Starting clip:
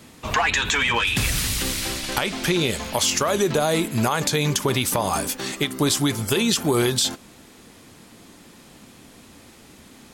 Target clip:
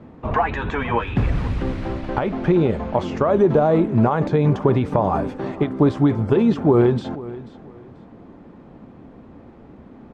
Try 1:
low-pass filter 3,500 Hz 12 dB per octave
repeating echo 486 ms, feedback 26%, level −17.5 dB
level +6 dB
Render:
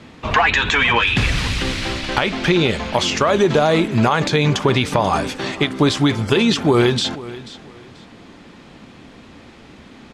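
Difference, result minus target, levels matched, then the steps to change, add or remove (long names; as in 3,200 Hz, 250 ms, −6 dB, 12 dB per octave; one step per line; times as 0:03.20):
4,000 Hz band +18.5 dB
change: low-pass filter 880 Hz 12 dB per octave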